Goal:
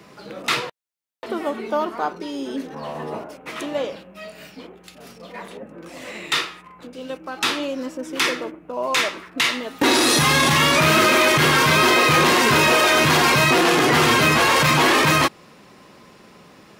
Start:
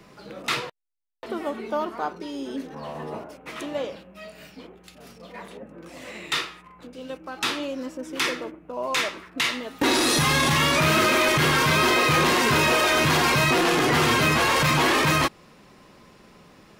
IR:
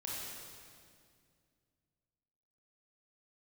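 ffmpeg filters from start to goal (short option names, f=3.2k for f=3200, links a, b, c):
-af "highpass=f=120:p=1,volume=4.5dB"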